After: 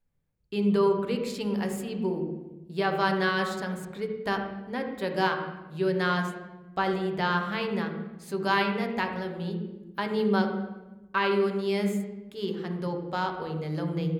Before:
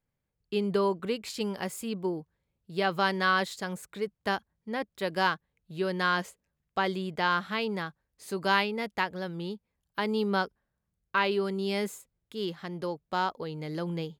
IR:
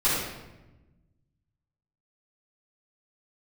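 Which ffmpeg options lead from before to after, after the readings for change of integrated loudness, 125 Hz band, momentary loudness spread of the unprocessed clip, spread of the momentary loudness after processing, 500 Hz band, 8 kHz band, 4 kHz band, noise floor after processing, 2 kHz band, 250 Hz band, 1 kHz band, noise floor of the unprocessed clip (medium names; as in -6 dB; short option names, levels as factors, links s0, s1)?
+2.0 dB, +5.5 dB, 11 LU, 10 LU, +3.5 dB, -2.0 dB, -1.5 dB, -51 dBFS, 0.0 dB, +5.0 dB, +0.5 dB, -83 dBFS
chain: -filter_complex "[0:a]asplit=2[s0][s1];[1:a]atrim=start_sample=2205,lowpass=3300,lowshelf=f=310:g=9[s2];[s1][s2]afir=irnorm=-1:irlink=0,volume=0.141[s3];[s0][s3]amix=inputs=2:normalize=0,volume=0.794"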